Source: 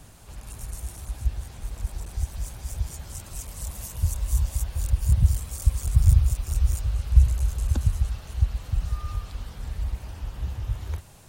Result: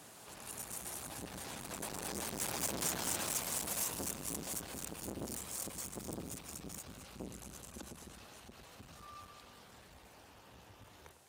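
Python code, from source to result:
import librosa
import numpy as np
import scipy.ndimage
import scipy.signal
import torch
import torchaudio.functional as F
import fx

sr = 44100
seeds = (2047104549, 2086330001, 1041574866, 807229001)

y = fx.doppler_pass(x, sr, speed_mps=8, closest_m=3.6, pass_at_s=2.73)
y = fx.tube_stage(y, sr, drive_db=44.0, bias=0.25)
y = scipy.signal.sosfilt(scipy.signal.butter(2, 270.0, 'highpass', fs=sr, output='sos'), y)
y = fx.echo_alternate(y, sr, ms=102, hz=1500.0, feedback_pct=68, wet_db=-11)
y = fx.end_taper(y, sr, db_per_s=200.0)
y = y * 10.0 ** (15.0 / 20.0)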